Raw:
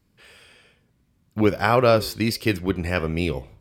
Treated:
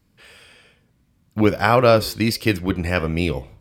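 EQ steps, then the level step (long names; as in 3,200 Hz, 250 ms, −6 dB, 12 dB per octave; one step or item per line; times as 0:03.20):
notch filter 390 Hz, Q 12
+3.0 dB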